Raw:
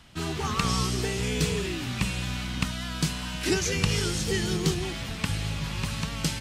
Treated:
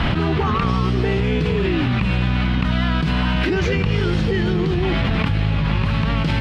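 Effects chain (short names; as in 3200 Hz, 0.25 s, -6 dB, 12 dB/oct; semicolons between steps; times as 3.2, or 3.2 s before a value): air absorption 390 m; fast leveller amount 100%; gain +2.5 dB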